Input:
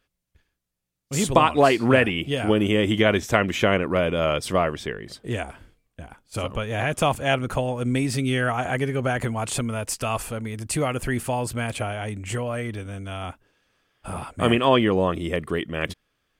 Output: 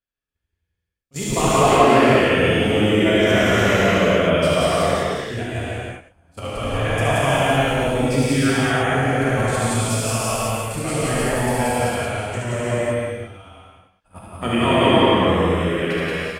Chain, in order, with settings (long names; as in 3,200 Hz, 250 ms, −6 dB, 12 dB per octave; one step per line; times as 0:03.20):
delay that plays each chunk backwards 101 ms, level −3 dB
noise gate −27 dBFS, range −20 dB
in parallel at −1.5 dB: downward compressor, threshold −26 dBFS, peak gain reduction 15 dB
on the sum: square-wave tremolo 9.5 Hz, depth 65%, duty 75%
on a send: loudspeakers that aren't time-aligned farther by 25 metres −4 dB, 61 metres −1 dB
on the sum: reverb whose tail is shaped and stops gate 410 ms flat, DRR −7.5 dB
level −9 dB